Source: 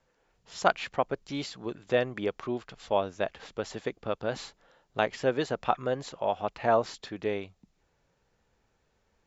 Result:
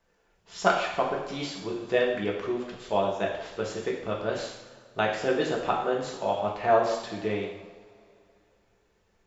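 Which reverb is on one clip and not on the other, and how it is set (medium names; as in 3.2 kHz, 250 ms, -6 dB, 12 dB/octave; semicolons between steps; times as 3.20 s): two-slope reverb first 0.8 s, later 2.9 s, from -19 dB, DRR -2.5 dB; trim -1.5 dB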